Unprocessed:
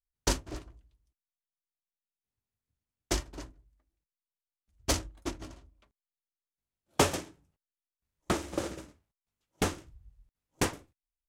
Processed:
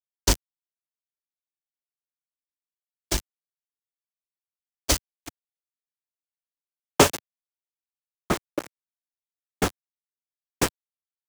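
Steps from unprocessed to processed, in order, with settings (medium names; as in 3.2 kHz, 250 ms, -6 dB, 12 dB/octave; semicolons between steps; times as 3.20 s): small samples zeroed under -27.5 dBFS; three bands expanded up and down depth 100%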